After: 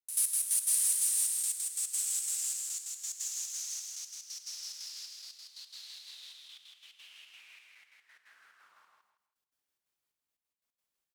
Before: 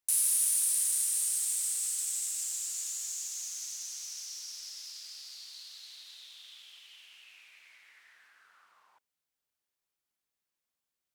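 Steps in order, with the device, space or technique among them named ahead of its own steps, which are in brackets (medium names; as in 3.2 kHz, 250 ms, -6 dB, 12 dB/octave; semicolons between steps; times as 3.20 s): trance gate with a delay (trance gate "..x...x.xxx.xxx" 178 bpm -12 dB; feedback delay 162 ms, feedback 26%, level -3 dB)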